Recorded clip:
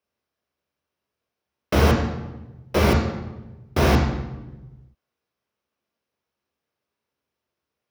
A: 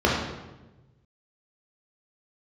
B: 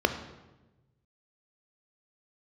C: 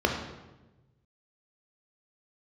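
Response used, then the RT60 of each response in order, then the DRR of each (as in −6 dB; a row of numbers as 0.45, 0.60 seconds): C; 1.1, 1.1, 1.1 seconds; −4.5, 7.5, 1.5 decibels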